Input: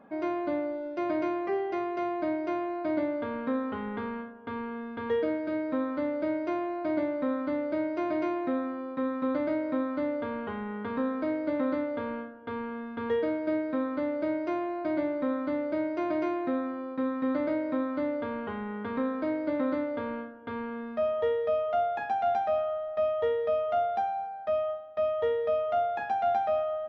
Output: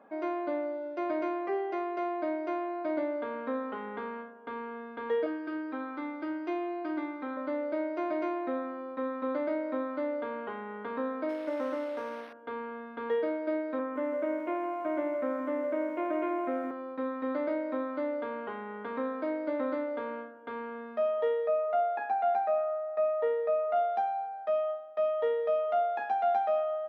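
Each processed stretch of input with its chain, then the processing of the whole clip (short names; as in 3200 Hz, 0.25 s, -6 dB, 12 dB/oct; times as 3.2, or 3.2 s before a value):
5.26–7.37 bell 510 Hz -8.5 dB 0.69 oct + comb 2.5 ms, depth 70%
11.29–12.33 delta modulation 32 kbps, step -37.5 dBFS + bell 180 Hz -4 dB 1.7 oct + decimation joined by straight lines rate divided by 6×
13.79–16.71 steep low-pass 3200 Hz 48 dB/oct + lo-fi delay 0.165 s, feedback 55%, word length 10-bit, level -9 dB
21.47–23.76 tone controls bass -2 dB, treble -9 dB + notch 3200 Hz, Q 6.1
whole clip: HPF 350 Hz 12 dB/oct; high shelf 3100 Hz -7.5 dB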